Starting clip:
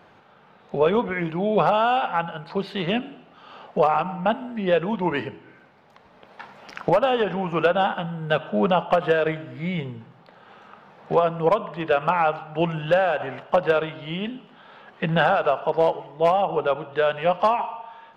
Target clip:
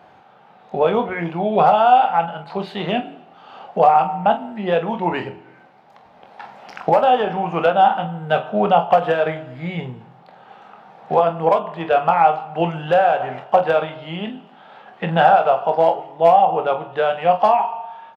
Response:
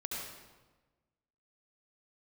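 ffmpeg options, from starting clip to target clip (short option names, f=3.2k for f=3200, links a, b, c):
-filter_complex "[0:a]highpass=60,equalizer=f=760:w=3.5:g=10,asplit=2[a][b];[b]aecho=0:1:24|46:0.355|0.266[c];[a][c]amix=inputs=2:normalize=0"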